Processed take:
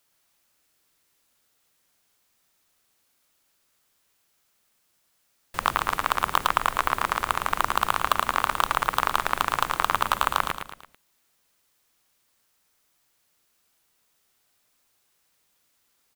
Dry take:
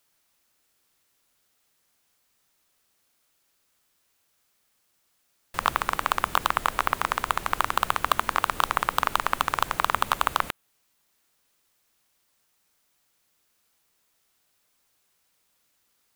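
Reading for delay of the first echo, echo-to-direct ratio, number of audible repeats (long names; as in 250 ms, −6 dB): 111 ms, −6.0 dB, 4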